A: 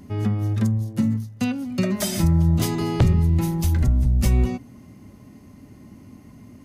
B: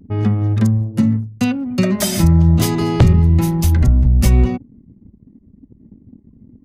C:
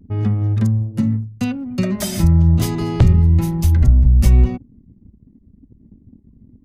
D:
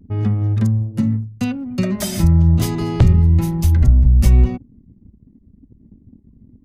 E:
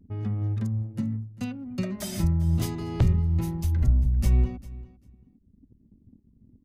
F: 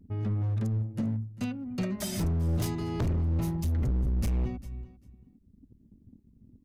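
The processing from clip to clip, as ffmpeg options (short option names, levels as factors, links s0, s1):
-af "anlmdn=2.51,volume=2.11"
-af "lowshelf=f=100:g=9.5,volume=0.531"
-af anull
-af "tremolo=f=2.3:d=0.31,aecho=1:1:396|792:0.106|0.0159,volume=0.355"
-af "asoftclip=type=hard:threshold=0.0562"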